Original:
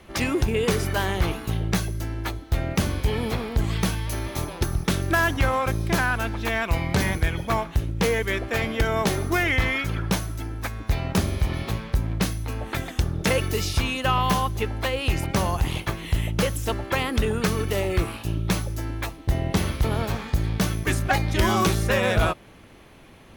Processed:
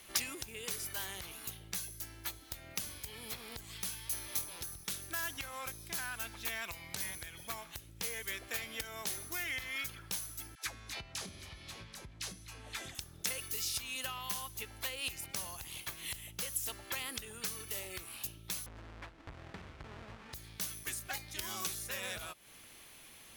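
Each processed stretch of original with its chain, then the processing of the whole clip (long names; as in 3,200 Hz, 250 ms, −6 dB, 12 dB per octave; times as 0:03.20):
0:10.55–0:12.95: low-pass filter 7,100 Hz + all-pass dispersion lows, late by 116 ms, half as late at 570 Hz
0:18.66–0:20.33: each half-wave held at its own peak + low-pass filter 1,800 Hz
whole clip: low-shelf EQ 360 Hz +7.5 dB; downward compressor 6 to 1, threshold −27 dBFS; first-order pre-emphasis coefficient 0.97; level +6 dB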